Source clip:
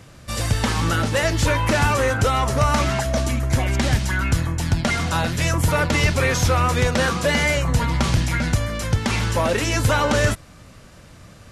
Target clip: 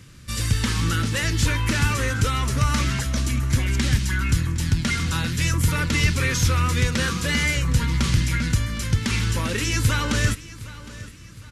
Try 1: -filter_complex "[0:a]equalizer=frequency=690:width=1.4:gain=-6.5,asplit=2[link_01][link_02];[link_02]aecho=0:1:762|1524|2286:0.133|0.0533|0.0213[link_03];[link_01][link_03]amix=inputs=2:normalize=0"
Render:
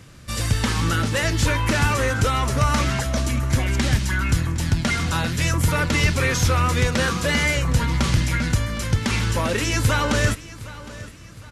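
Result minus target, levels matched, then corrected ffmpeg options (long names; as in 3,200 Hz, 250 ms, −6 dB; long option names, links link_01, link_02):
500 Hz band +5.5 dB
-filter_complex "[0:a]equalizer=frequency=690:width=1.4:gain=-18.5,asplit=2[link_01][link_02];[link_02]aecho=0:1:762|1524|2286:0.133|0.0533|0.0213[link_03];[link_01][link_03]amix=inputs=2:normalize=0"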